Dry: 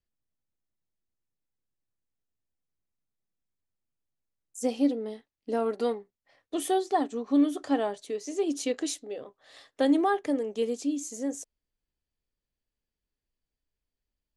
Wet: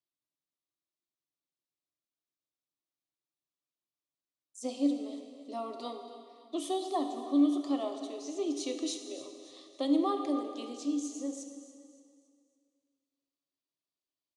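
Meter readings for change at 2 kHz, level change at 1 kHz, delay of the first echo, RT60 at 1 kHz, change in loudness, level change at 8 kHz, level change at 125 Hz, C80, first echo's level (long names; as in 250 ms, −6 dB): −14.0 dB, −6.0 dB, 281 ms, 2.2 s, −4.5 dB, −5.0 dB, can't be measured, 7.0 dB, −15.5 dB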